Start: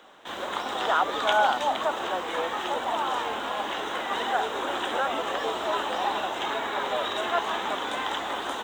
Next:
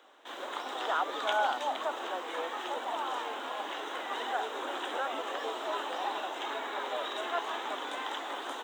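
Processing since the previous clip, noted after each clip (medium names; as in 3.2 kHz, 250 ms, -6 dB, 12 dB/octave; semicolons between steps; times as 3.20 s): steep high-pass 250 Hz 48 dB/octave; trim -7 dB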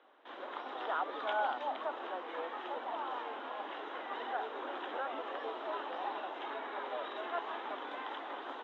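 distance through air 330 m; trim -3 dB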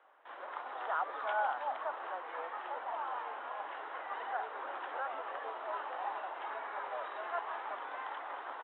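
three-band isolator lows -18 dB, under 550 Hz, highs -23 dB, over 2.6 kHz; frequency-shifting echo 216 ms, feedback 61%, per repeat +130 Hz, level -18 dB; trim +2 dB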